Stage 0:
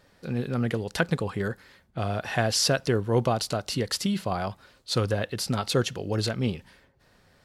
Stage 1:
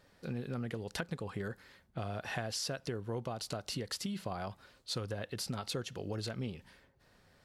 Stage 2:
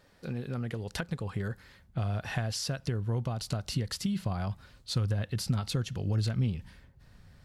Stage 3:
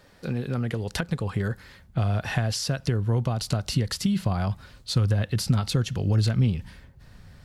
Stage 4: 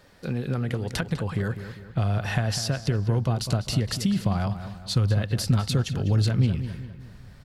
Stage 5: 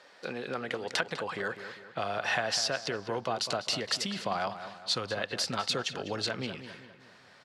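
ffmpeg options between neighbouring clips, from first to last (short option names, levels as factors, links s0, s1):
-af "acompressor=threshold=0.0316:ratio=6,volume=0.562"
-af "asubboost=boost=5:cutoff=180,volume=1.33"
-filter_complex "[0:a]acrossover=split=410[s0][s1];[s1]acompressor=threshold=0.0224:ratio=6[s2];[s0][s2]amix=inputs=2:normalize=0,volume=2.24"
-filter_complex "[0:a]asplit=2[s0][s1];[s1]adelay=200,lowpass=f=3300:p=1,volume=0.299,asplit=2[s2][s3];[s3]adelay=200,lowpass=f=3300:p=1,volume=0.47,asplit=2[s4][s5];[s5]adelay=200,lowpass=f=3300:p=1,volume=0.47,asplit=2[s6][s7];[s7]adelay=200,lowpass=f=3300:p=1,volume=0.47,asplit=2[s8][s9];[s9]adelay=200,lowpass=f=3300:p=1,volume=0.47[s10];[s0][s2][s4][s6][s8][s10]amix=inputs=6:normalize=0"
-af "highpass=520,lowpass=6200,volume=1.33"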